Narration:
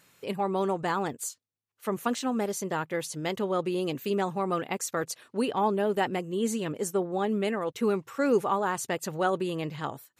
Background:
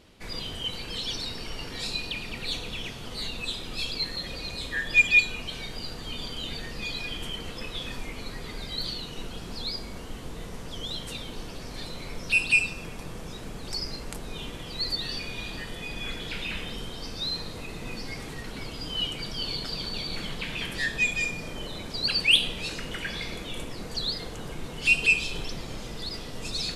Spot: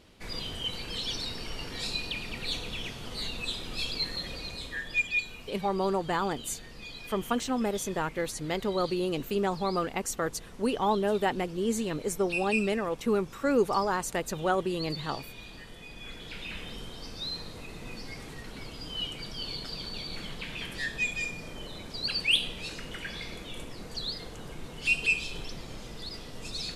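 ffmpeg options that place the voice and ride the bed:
ffmpeg -i stem1.wav -i stem2.wav -filter_complex "[0:a]adelay=5250,volume=-0.5dB[link_01];[1:a]volume=3.5dB,afade=type=out:start_time=4.18:duration=0.9:silence=0.375837,afade=type=in:start_time=15.96:duration=0.75:silence=0.562341[link_02];[link_01][link_02]amix=inputs=2:normalize=0" out.wav

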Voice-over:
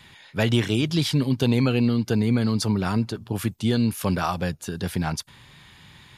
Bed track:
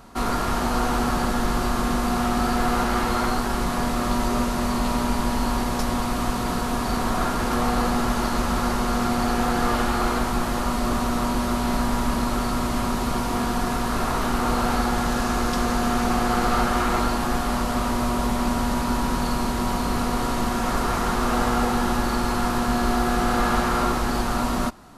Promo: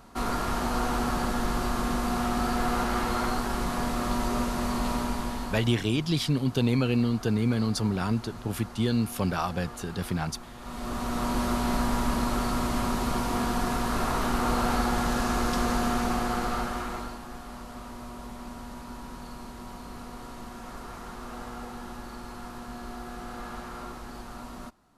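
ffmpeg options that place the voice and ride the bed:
ffmpeg -i stem1.wav -i stem2.wav -filter_complex "[0:a]adelay=5150,volume=-4dB[link_01];[1:a]volume=12dB,afade=type=out:start_time=4.91:duration=0.93:silence=0.16788,afade=type=in:start_time=10.58:duration=0.82:silence=0.141254,afade=type=out:start_time=15.74:duration=1.48:silence=0.199526[link_02];[link_01][link_02]amix=inputs=2:normalize=0" out.wav

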